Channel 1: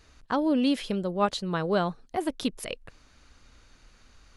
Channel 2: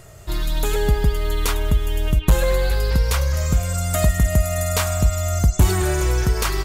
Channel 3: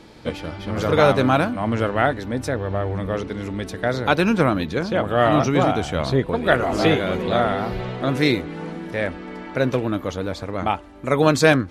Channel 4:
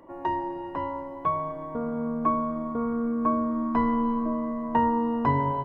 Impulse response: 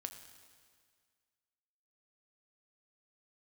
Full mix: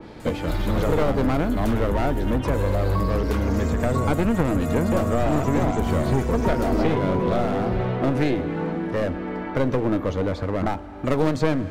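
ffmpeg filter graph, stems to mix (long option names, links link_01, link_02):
-filter_complex "[1:a]asoftclip=type=tanh:threshold=-14.5dB,acompressor=threshold=-21dB:ratio=6,adelay=200,volume=-0.5dB[link_01];[2:a]highshelf=frequency=3200:gain=-12,aeval=exprs='clip(val(0),-1,0.0596)':channel_layout=same,volume=2.5dB,asplit=2[link_02][link_03];[link_03]volume=-3.5dB[link_04];[3:a]adelay=1700,volume=0dB[link_05];[4:a]atrim=start_sample=2205[link_06];[link_04][link_06]afir=irnorm=-1:irlink=0[link_07];[link_01][link_02][link_05][link_07]amix=inputs=4:normalize=0,acrossover=split=550|4100[link_08][link_09][link_10];[link_08]acompressor=threshold=-18dB:ratio=4[link_11];[link_09]acompressor=threshold=-29dB:ratio=4[link_12];[link_10]acompressor=threshold=-42dB:ratio=4[link_13];[link_11][link_12][link_13]amix=inputs=3:normalize=0,adynamicequalizer=threshold=0.00708:dfrequency=2700:dqfactor=0.7:tfrequency=2700:tqfactor=0.7:attack=5:release=100:ratio=0.375:range=2:mode=cutabove:tftype=highshelf"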